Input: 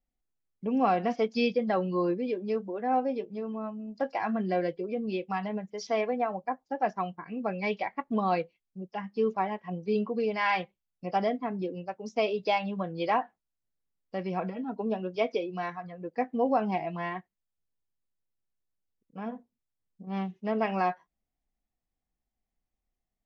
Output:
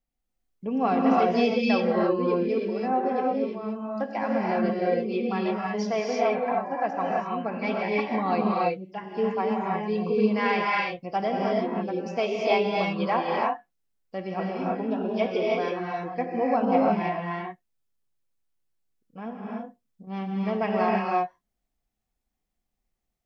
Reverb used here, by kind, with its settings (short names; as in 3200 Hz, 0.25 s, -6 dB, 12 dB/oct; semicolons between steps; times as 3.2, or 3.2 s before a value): non-linear reverb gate 0.36 s rising, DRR -3 dB